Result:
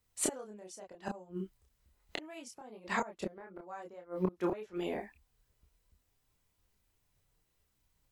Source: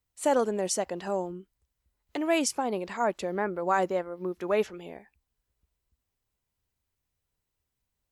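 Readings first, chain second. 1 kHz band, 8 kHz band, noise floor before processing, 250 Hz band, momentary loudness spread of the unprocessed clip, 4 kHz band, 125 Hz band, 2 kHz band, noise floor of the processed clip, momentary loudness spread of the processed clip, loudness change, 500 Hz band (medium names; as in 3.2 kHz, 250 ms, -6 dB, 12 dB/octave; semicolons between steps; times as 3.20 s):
-12.0 dB, -6.0 dB, -84 dBFS, -7.5 dB, 11 LU, -9.5 dB, -2.5 dB, -7.5 dB, -78 dBFS, 14 LU, -10.0 dB, -12.0 dB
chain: inverted gate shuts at -24 dBFS, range -27 dB; chorus voices 6, 0.29 Hz, delay 28 ms, depth 5 ms; trim +9 dB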